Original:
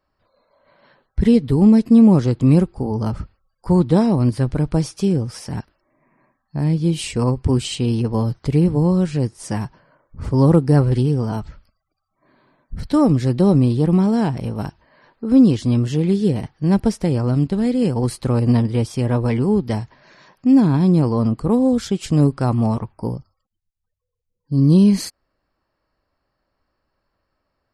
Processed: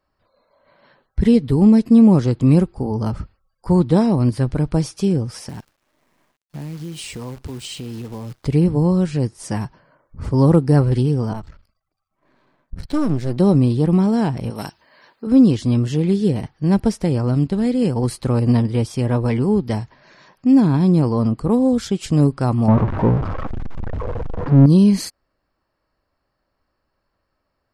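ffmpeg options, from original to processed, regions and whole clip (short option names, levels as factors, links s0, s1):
-filter_complex "[0:a]asettb=1/sr,asplit=3[s0][s1][s2];[s0]atrim=end=5.494[s3];[s1]atrim=start=5.49:end=8.45,asetpts=PTS-STARTPTS,afade=t=in:d=0.004:c=qsin,afade=t=out:st=2.956:d=0.004:c=qsin,lowshelf=f=96:g=-6,acompressor=threshold=0.0398:ratio=6:attack=3.2:release=140:knee=1:detection=peak,acrusher=bits=8:dc=4:mix=0:aa=0.000001[s4];[s2]atrim=start=8.446[s5];[s3][s4]acrossfade=d=0.004:c1=hsin:c2=qsin[s6];[s6][s5]acrossfade=d=0.004:c1=qsin:c2=hsin,asettb=1/sr,asplit=3[s7][s8][s9];[s7]atrim=end=11.334[s10];[s8]atrim=start=11.33:end=13.37,asetpts=PTS-STARTPTS,afade=t=in:d=0.004:c=qsin,afade=t=out:st=2.036:d=0.004:c=qsin,aeval=exprs='if(lt(val(0),0),0.251*val(0),val(0))':c=same,adynamicequalizer=threshold=0.0141:dfrequency=1600:dqfactor=0.7:tfrequency=1600:tqfactor=0.7:attack=5:release=100:ratio=0.375:range=2:mode=cutabove:tftype=highshelf[s11];[s9]atrim=start=13.366[s12];[s10][s11]acrossfade=d=0.004:c1=hsin:c2=qsin[s13];[s13][s12]acrossfade=d=0.004:c1=qsin:c2=hsin,asettb=1/sr,asplit=3[s14][s15][s16];[s14]atrim=end=14.504[s17];[s15]atrim=start=14.5:end=15.27,asetpts=PTS-STARTPTS,afade=t=in:d=0.004:c=qsin,afade=t=out:st=0.766:d=0.004:c=qsin,highpass=f=260:p=1,highshelf=f=2700:g=11,asoftclip=type=hard:threshold=0.15[s18];[s16]atrim=start=15.266[s19];[s17][s18]acrossfade=d=0.004:c1=hsin:c2=qsin[s20];[s20][s19]acrossfade=d=0.004:c1=qsin:c2=hsin,asettb=1/sr,asplit=3[s21][s22][s23];[s21]atrim=end=22.684[s24];[s22]atrim=start=22.68:end=24.66,asetpts=PTS-STARTPTS,afade=t=in:d=0.004:c=qsin,afade=t=out:st=1.976:d=0.004:c=qsin,aeval=exprs='val(0)+0.5*0.075*sgn(val(0))':c=same,lowpass=1200,acontrast=55[s25];[s23]atrim=start=24.656[s26];[s24][s25]acrossfade=d=0.004:c1=hsin:c2=qsin[s27];[s27][s26]acrossfade=d=0.004:c1=qsin:c2=hsin"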